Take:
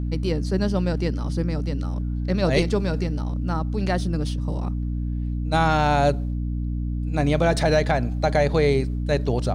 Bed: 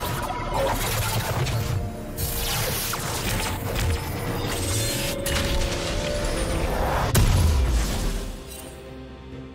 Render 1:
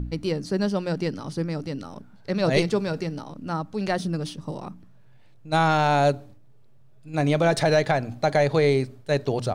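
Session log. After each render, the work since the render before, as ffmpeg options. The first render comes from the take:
-af "bandreject=f=60:t=h:w=4,bandreject=f=120:t=h:w=4,bandreject=f=180:t=h:w=4,bandreject=f=240:t=h:w=4,bandreject=f=300:t=h:w=4"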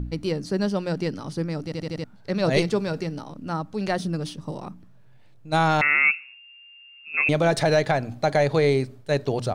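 -filter_complex "[0:a]asettb=1/sr,asplit=3[s0][s1][s2];[s0]atrim=end=5.814[s3];[s1]atrim=start=5.81:end=7.29,asetpts=PTS-STARTPTS,afade=t=in:d=0.004:c=qsin,afade=t=out:st=1.476:d=0.004:c=qsin,lowpass=f=2400:t=q:w=0.5098,lowpass=f=2400:t=q:w=0.6013,lowpass=f=2400:t=q:w=0.9,lowpass=f=2400:t=q:w=2.563,afreqshift=-2800[s4];[s2]atrim=start=7.286[s5];[s3][s4]acrossfade=d=0.004:c1=hsin:c2=qsin[s6];[s6][s5]acrossfade=d=0.004:c1=qsin:c2=hsin,asplit=6[s7][s8][s9][s10][s11][s12];[s7]atrim=end=1.722[s13];[s8]atrim=start=1.638:end=1.722[s14];[s9]atrim=start=1.638:end=1.722[s15];[s10]atrim=start=1.638:end=1.722[s16];[s11]atrim=start=1.638:end=1.722[s17];[s12]atrim=start=2.038[s18];[s13][s14]acrossfade=d=0.004:c1=hsin:c2=hsin[s19];[s19][s15]acrossfade=d=0.004:c1=hsin:c2=hsin[s20];[s20][s16]acrossfade=d=0.004:c1=hsin:c2=hsin[s21];[s21][s17]acrossfade=d=0.004:c1=hsin:c2=hsin[s22];[s22][s18]acrossfade=d=0.004:c1=hsin:c2=hsin"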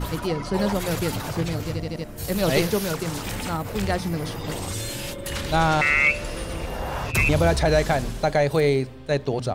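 -filter_complex "[1:a]volume=0.531[s0];[0:a][s0]amix=inputs=2:normalize=0"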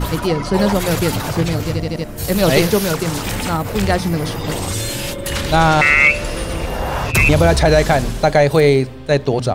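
-af "volume=2.51,alimiter=limit=0.794:level=0:latency=1"

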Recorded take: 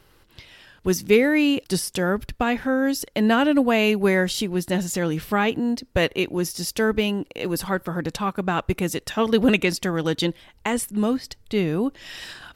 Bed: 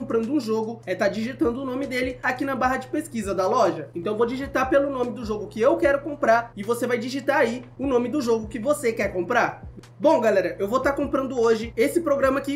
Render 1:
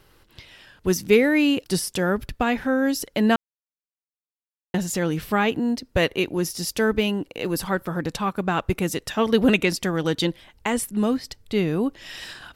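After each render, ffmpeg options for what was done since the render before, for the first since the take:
-filter_complex "[0:a]asplit=3[s0][s1][s2];[s0]atrim=end=3.36,asetpts=PTS-STARTPTS,afade=t=out:st=3.356:d=0.004:c=hsin[s3];[s1]atrim=start=3.36:end=4.74,asetpts=PTS-STARTPTS,volume=0[s4];[s2]atrim=start=4.74,asetpts=PTS-STARTPTS,afade=t=in:d=0.004:c=hsin[s5];[s3][s4][s5]concat=n=3:v=0:a=1"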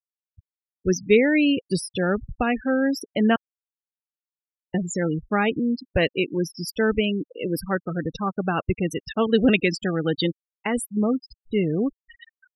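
-af "equalizer=f=980:w=3.9:g=-4.5,afftfilt=real='re*gte(hypot(re,im),0.0708)':imag='im*gte(hypot(re,im),0.0708)':win_size=1024:overlap=0.75"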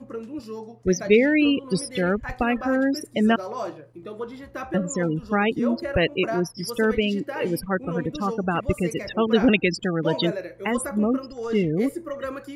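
-filter_complex "[1:a]volume=0.282[s0];[0:a][s0]amix=inputs=2:normalize=0"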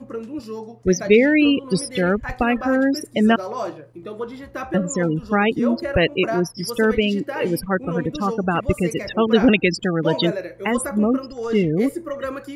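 -af "volume=1.5,alimiter=limit=0.794:level=0:latency=1"

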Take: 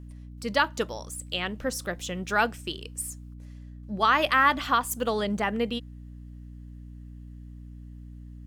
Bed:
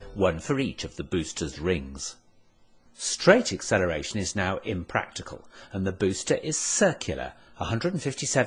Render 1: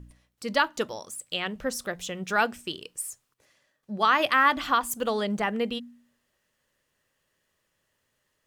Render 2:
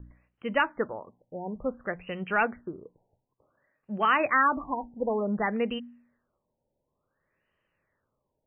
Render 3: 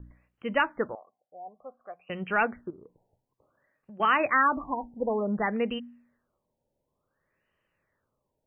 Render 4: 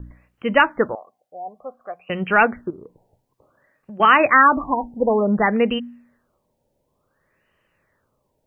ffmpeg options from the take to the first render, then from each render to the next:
-af "bandreject=f=60:t=h:w=4,bandreject=f=120:t=h:w=4,bandreject=f=180:t=h:w=4,bandreject=f=240:t=h:w=4,bandreject=f=300:t=h:w=4"
-filter_complex "[0:a]acrossover=split=600|1300[s0][s1][s2];[s1]asoftclip=type=tanh:threshold=0.0596[s3];[s0][s3][s2]amix=inputs=3:normalize=0,afftfilt=real='re*lt(b*sr/1024,940*pow(3200/940,0.5+0.5*sin(2*PI*0.56*pts/sr)))':imag='im*lt(b*sr/1024,940*pow(3200/940,0.5+0.5*sin(2*PI*0.56*pts/sr)))':win_size=1024:overlap=0.75"
-filter_complex "[0:a]asettb=1/sr,asplit=3[s0][s1][s2];[s0]atrim=end=0.954[s3];[s1]atrim=start=0.95:end=2.1,asetpts=PTS-STARTPTS,afade=t=in:d=0.004:c=qsin,afade=t=out:st=1.146:d=0.004:c=qsin,asplit=3[s4][s5][s6];[s4]bandpass=f=730:t=q:w=8,volume=1[s7];[s5]bandpass=f=1090:t=q:w=8,volume=0.501[s8];[s6]bandpass=f=2440:t=q:w=8,volume=0.355[s9];[s7][s8][s9]amix=inputs=3:normalize=0[s10];[s2]atrim=start=2.096[s11];[s3][s10]acrossfade=d=0.004:c1=hsin:c2=qsin[s12];[s12][s11]acrossfade=d=0.004:c1=qsin:c2=hsin,asettb=1/sr,asplit=3[s13][s14][s15];[s13]atrim=end=2.704[s16];[s14]atrim=start=2.7:end=4,asetpts=PTS-STARTPTS,afade=t=in:d=0.004:c=qsin,afade=t=out:st=1.296:d=0.004:c=qsin,acompressor=threshold=0.00562:ratio=6:attack=3.2:release=140:knee=1:detection=peak[s17];[s15]atrim=start=3.996[s18];[s16][s17]acrossfade=d=0.004:c1=hsin:c2=qsin[s19];[s19][s18]acrossfade=d=0.004:c1=qsin:c2=hsin"
-af "volume=3.16"

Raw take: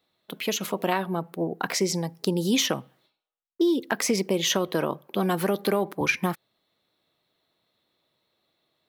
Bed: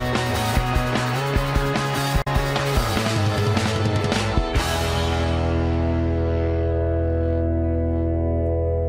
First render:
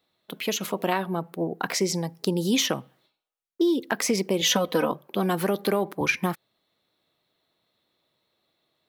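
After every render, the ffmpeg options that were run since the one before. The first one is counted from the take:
-filter_complex "[0:a]asettb=1/sr,asplit=3[s0][s1][s2];[s0]atrim=end=4.414[s3];[s1]atrim=start=4.41:end=4.92,asetpts=PTS-STARTPTS,afade=t=in:d=0.004:c=qsin,afade=t=out:st=0.506:d=0.004:c=qsin,aecho=1:1:4:0.87,atrim=end_sample=22491[s4];[s2]atrim=start=4.916[s5];[s3][s4]acrossfade=d=0.004:c1=hsin:c2=qsin[s6];[s6][s5]acrossfade=d=0.004:c1=qsin:c2=hsin"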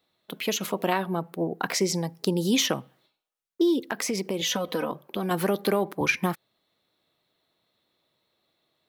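-filter_complex "[0:a]asettb=1/sr,asplit=3[s0][s1][s2];[s0]atrim=end=3.854[s3];[s1]atrim=start=3.85:end=5.31,asetpts=PTS-STARTPTS,afade=t=in:d=0.004:c=qsin,afade=t=out:st=1.456:d=0.004:c=qsin,acompressor=threshold=0.0447:ratio=2:attack=3.2:release=140:knee=1:detection=peak[s4];[s2]atrim=start=5.306[s5];[s3][s4]acrossfade=d=0.004:c1=hsin:c2=qsin[s6];[s6][s5]acrossfade=d=0.004:c1=qsin:c2=hsin"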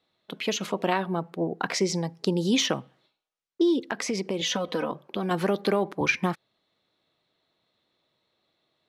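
-af "lowpass=6500"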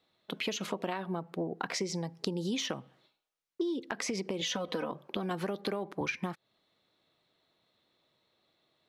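-af "acompressor=threshold=0.0282:ratio=6"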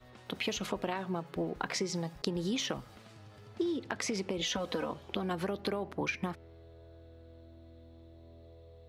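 -filter_complex "[1:a]volume=0.0224[s0];[0:a][s0]amix=inputs=2:normalize=0"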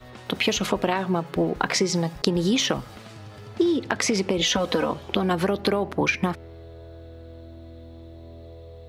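-af "volume=3.76"

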